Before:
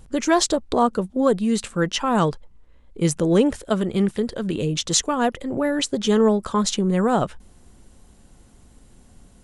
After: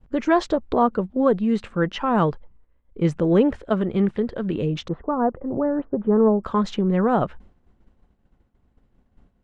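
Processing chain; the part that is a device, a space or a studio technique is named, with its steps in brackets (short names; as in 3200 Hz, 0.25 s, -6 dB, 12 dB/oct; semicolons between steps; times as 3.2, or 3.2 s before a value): hearing-loss simulation (LPF 2200 Hz 12 dB/oct; expander -40 dBFS); 4.88–6.44 LPF 1200 Hz 24 dB/oct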